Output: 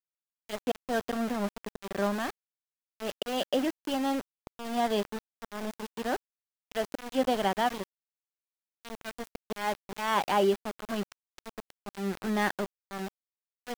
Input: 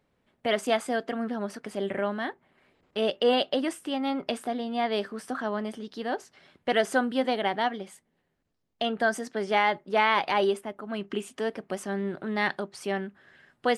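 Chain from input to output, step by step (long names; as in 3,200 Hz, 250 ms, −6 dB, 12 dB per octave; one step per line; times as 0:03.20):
loudspeaker in its box 190–6,600 Hz, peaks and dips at 190 Hz +8 dB, 2,200 Hz −9 dB, 4,100 Hz −9 dB
volume swells 255 ms
centre clipping without the shift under −32.5 dBFS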